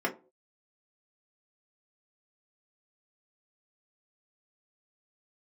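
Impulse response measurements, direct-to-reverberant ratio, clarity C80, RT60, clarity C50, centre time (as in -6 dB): -1.5 dB, 21.5 dB, no single decay rate, 14.5 dB, 11 ms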